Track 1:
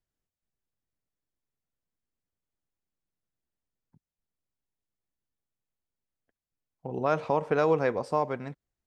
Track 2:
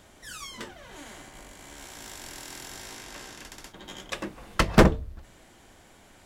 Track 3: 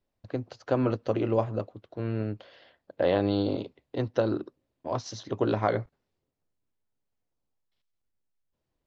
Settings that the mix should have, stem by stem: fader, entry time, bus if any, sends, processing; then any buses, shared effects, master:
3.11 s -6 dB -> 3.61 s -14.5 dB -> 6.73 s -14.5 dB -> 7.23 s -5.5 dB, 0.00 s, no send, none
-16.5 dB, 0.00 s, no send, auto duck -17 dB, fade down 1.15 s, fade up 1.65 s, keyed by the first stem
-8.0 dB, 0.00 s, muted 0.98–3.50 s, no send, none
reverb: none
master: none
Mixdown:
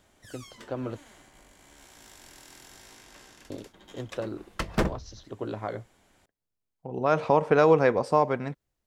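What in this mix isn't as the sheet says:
stem 1 -6.0 dB -> +4.5 dB; stem 2 -16.5 dB -> -9.0 dB

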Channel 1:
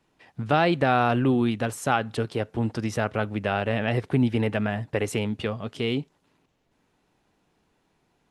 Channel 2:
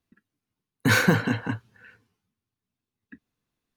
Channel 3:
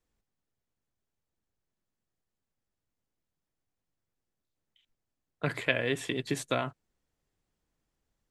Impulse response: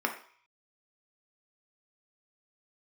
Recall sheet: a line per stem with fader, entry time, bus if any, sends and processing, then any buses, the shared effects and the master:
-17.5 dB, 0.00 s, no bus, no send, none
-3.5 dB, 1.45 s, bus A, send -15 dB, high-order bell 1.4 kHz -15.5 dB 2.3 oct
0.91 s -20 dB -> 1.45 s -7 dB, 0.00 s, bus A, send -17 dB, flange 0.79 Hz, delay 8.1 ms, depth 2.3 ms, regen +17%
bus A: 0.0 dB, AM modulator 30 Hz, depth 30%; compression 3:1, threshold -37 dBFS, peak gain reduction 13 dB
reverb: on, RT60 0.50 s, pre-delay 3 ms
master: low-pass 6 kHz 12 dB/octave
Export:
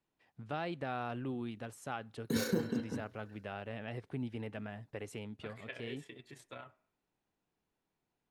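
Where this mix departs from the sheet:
stem 3 -20.0 dB -> -28.5 dB; master: missing low-pass 6 kHz 12 dB/octave

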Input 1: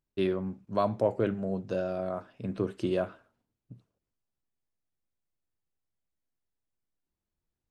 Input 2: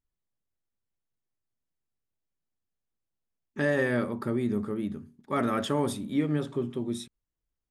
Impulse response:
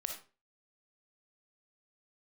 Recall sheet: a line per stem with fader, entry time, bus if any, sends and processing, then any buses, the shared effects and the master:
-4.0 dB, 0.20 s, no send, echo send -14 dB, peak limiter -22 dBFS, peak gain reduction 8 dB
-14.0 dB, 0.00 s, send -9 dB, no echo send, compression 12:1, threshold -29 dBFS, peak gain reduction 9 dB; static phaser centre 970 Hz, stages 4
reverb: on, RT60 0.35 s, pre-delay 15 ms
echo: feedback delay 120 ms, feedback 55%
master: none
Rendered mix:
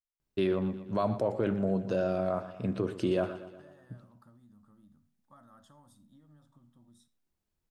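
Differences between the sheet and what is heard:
stem 1 -4.0 dB -> +3.0 dB; stem 2 -14.0 dB -> -23.0 dB

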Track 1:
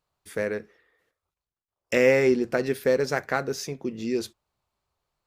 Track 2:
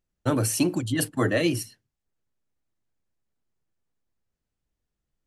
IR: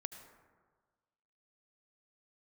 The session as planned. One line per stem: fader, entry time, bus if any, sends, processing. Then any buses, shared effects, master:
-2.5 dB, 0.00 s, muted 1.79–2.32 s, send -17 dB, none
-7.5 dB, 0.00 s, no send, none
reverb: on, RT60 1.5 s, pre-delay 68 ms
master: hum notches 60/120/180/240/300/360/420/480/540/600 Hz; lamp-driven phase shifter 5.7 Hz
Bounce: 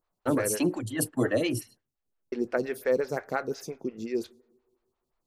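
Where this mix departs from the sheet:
stem 2 -7.5 dB -> 0.0 dB; master: missing hum notches 60/120/180/240/300/360/420/480/540/600 Hz

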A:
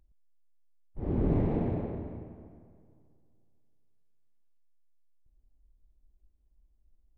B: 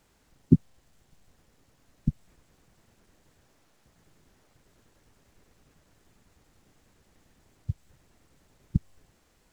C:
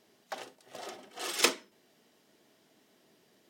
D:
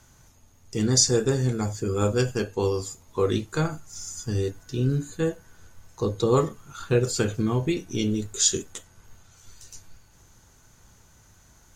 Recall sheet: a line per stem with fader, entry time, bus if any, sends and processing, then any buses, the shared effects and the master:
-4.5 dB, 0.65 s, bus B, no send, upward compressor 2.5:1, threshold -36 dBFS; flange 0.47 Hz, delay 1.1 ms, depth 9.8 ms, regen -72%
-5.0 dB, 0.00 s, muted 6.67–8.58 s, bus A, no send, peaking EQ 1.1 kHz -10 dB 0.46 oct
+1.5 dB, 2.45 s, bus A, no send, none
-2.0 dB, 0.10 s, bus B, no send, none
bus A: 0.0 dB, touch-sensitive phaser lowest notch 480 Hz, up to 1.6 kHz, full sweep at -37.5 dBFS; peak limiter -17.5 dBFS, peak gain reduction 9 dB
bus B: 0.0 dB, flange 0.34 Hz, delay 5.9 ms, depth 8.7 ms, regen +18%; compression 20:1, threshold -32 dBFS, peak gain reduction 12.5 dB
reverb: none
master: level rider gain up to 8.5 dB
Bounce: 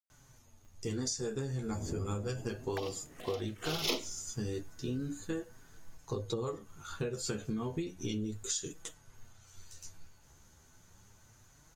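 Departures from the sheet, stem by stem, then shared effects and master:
stem B: muted; master: missing level rider gain up to 8.5 dB

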